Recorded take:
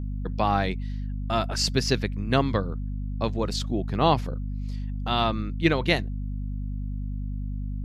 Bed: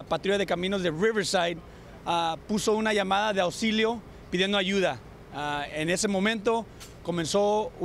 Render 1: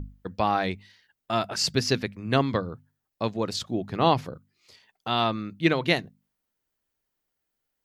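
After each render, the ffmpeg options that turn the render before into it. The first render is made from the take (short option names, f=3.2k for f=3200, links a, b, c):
-af "bandreject=f=50:t=h:w=6,bandreject=f=100:t=h:w=6,bandreject=f=150:t=h:w=6,bandreject=f=200:t=h:w=6,bandreject=f=250:t=h:w=6"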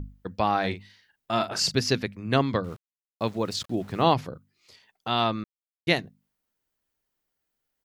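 -filter_complex "[0:a]asplit=3[a][b][c];[a]afade=t=out:st=0.63:d=0.02[d];[b]asplit=2[e][f];[f]adelay=40,volume=-8.5dB[g];[e][g]amix=inputs=2:normalize=0,afade=t=in:st=0.63:d=0.02,afade=t=out:st=1.7:d=0.02[h];[c]afade=t=in:st=1.7:d=0.02[i];[d][h][i]amix=inputs=3:normalize=0,asettb=1/sr,asplit=3[j][k][l];[j]atrim=end=2.644[m];[k]atrim=start=2.64:end=4.14,asetpts=PTS-STARTPTS,afade=t=in:d=0.004:c=qsin,afade=t=out:st=1.496:d=0.004:c=qsin,aeval=exprs='val(0)*gte(abs(val(0)),0.00501)':c=same[n];[l]atrim=start=4.136[o];[m][n]acrossfade=d=0.004:c1=hsin:c2=qsin[p];[p][o]acrossfade=d=0.004:c1=qsin:c2=hsin,asplit=3[q][r][s];[q]atrim=end=5.44,asetpts=PTS-STARTPTS,afade=t=out:st=5.436:d=0.004:c=hsin[t];[r]atrim=start=5.44:end=5.87,asetpts=PTS-STARTPTS,volume=0[u];[s]atrim=start=5.87,asetpts=PTS-STARTPTS,afade=t=in:d=0.004:c=hsin[v];[t][u][v]concat=n=3:v=0:a=1"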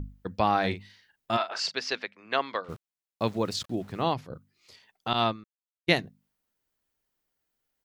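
-filter_complex "[0:a]asplit=3[a][b][c];[a]afade=t=out:st=1.36:d=0.02[d];[b]highpass=670,lowpass=4k,afade=t=in:st=1.36:d=0.02,afade=t=out:st=2.68:d=0.02[e];[c]afade=t=in:st=2.68:d=0.02[f];[d][e][f]amix=inputs=3:normalize=0,asettb=1/sr,asplit=3[g][h][i];[g]atrim=end=5.134[j];[h]atrim=start=5.13:end=5.89,asetpts=PTS-STARTPTS,afade=t=in:d=0.004:c=qsin,afade=t=out:st=0.756:d=0.004:c=qsin,agate=range=-33dB:threshold=-23dB:ratio=3:release=100:detection=peak[k];[i]atrim=start=5.886[l];[j][k]acrossfade=d=0.004:c1=hsin:c2=qsin[m];[m][l]acrossfade=d=0.004:c1=qsin:c2=hsin,asplit=2[n][o];[n]atrim=end=4.3,asetpts=PTS-STARTPTS,afade=t=out:st=3.37:d=0.93:silence=0.316228[p];[o]atrim=start=4.3,asetpts=PTS-STARTPTS,afade=t=in:d=0.004:c=hsin:silence=0.316228[q];[p][q]concat=n=2:v=0:a=1"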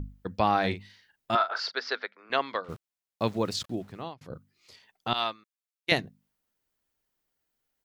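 -filter_complex "[0:a]asettb=1/sr,asplit=3[a][b][c];[a]atrim=end=1.354[d];[b]atrim=start=1.35:end=2.3,asetpts=PTS-STARTPTS,afade=t=in:d=0.004:c=qsin,afade=t=out:st=0.946:d=0.004:c=qsin,highpass=370,equalizer=f=440:t=q:w=4:g=3,equalizer=f=1.4k:t=q:w=4:g=9,equalizer=f=2.7k:t=q:w=4:g=-9,lowpass=f=4.8k:w=0.5412,lowpass=f=4.8k:w=1.3066[e];[c]atrim=start=2.296[f];[d][e]acrossfade=d=0.004:c1=hsin:c2=qsin[g];[g][f]acrossfade=d=0.004:c1=qsin:c2=hsin,asettb=1/sr,asplit=3[h][i][j];[h]atrim=end=5.144[k];[i]atrim=start=5.14:end=5.92,asetpts=PTS-STARTPTS,afade=t=in:d=0.004:c=qsin,afade=t=out:st=0.776:d=0.004:c=qsin,highpass=f=1.2k:p=1[l];[j]atrim=start=5.916[m];[k][l]acrossfade=d=0.004:c1=hsin:c2=qsin[n];[n][m]acrossfade=d=0.004:c1=qsin:c2=hsin,asplit=2[o][p];[o]atrim=end=4.21,asetpts=PTS-STARTPTS,afade=t=out:st=3.64:d=0.57[q];[p]atrim=start=4.21,asetpts=PTS-STARTPTS,afade=t=in:d=0.004:c=hsin[r];[q][r]concat=n=2:v=0:a=1"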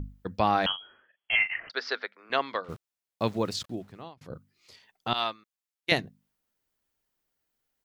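-filter_complex "[0:a]asettb=1/sr,asplit=3[a][b][c];[a]atrim=end=0.664[d];[b]atrim=start=0.66:end=1.7,asetpts=PTS-STARTPTS,afade=t=in:d=0.004:c=qsin,afade=t=out:st=1.036:d=0.004:c=qsin,lowpass=f=2.9k:t=q:w=0.5098,lowpass=f=2.9k:t=q:w=0.6013,lowpass=f=2.9k:t=q:w=0.9,lowpass=f=2.9k:t=q:w=2.563,afreqshift=-3400[e];[c]atrim=start=1.696[f];[d][e]acrossfade=d=0.004:c1=hsin:c2=qsin[g];[g][f]acrossfade=d=0.004:c1=qsin:c2=hsin,asplit=2[h][i];[h]atrim=end=4.17,asetpts=PTS-STARTPTS,afade=t=out:st=3.39:d=0.78:silence=0.446684[j];[i]atrim=start=4.17,asetpts=PTS-STARTPTS,afade=t=in:d=0.004:c=hsin:silence=0.446684[k];[j][k]concat=n=2:v=0:a=1"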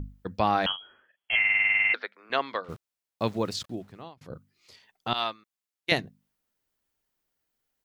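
-filter_complex "[0:a]asplit=12[a][b][c][d][e][f][g][h][i][j][k][l];[a]atrim=end=1.442[m];[b]atrim=start=1.388:end=1.442[n];[c]atrim=start=1.388:end=1.442[o];[d]atrim=start=1.388:end=1.442[p];[e]atrim=start=1.388:end=1.442[q];[f]atrim=start=1.388:end=1.442[r];[g]atrim=start=1.388:end=1.442[s];[h]atrim=start=1.388:end=1.442[t];[i]atrim=start=1.388:end=1.442[u];[j]atrim=start=1.388:end=1.442[v];[k]atrim=start=1.388:end=1.442[w];[l]atrim=start=1.938[x];[m][n]acrossfade=d=0.004:c1=hsin:c2=hsin[y];[y][o]acrossfade=d=0.004:c1=hsin:c2=hsin[z];[z][p]acrossfade=d=0.004:c1=hsin:c2=hsin[aa];[aa][q]acrossfade=d=0.004:c1=hsin:c2=hsin[ab];[ab][r]acrossfade=d=0.004:c1=hsin:c2=hsin[ac];[ac][s]acrossfade=d=0.004:c1=hsin:c2=hsin[ad];[ad][t]acrossfade=d=0.004:c1=hsin:c2=hsin[ae];[ae][u]acrossfade=d=0.004:c1=hsin:c2=hsin[af];[af][v]acrossfade=d=0.004:c1=hsin:c2=hsin[ag];[ag][w]acrossfade=d=0.004:c1=hsin:c2=hsin[ah];[ah][x]acrossfade=d=0.004:c1=hsin:c2=hsin"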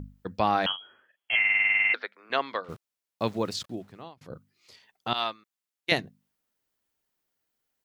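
-af "lowshelf=f=67:g=-8.5"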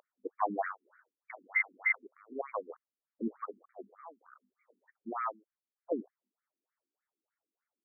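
-af "asoftclip=type=tanh:threshold=-11dB,afftfilt=real='re*between(b*sr/1024,270*pow(1700/270,0.5+0.5*sin(2*PI*3.3*pts/sr))/1.41,270*pow(1700/270,0.5+0.5*sin(2*PI*3.3*pts/sr))*1.41)':imag='im*between(b*sr/1024,270*pow(1700/270,0.5+0.5*sin(2*PI*3.3*pts/sr))/1.41,270*pow(1700/270,0.5+0.5*sin(2*PI*3.3*pts/sr))*1.41)':win_size=1024:overlap=0.75"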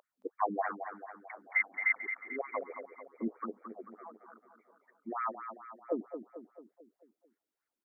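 -af "aecho=1:1:221|442|663|884|1105|1326:0.355|0.188|0.0997|0.0528|0.028|0.0148"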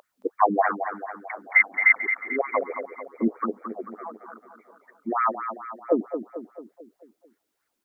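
-af "volume=12dB"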